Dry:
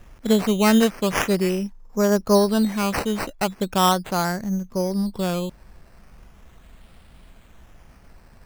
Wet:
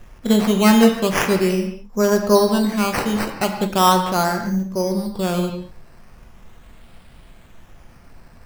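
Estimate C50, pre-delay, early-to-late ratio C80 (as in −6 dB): 6.5 dB, 6 ms, 8.0 dB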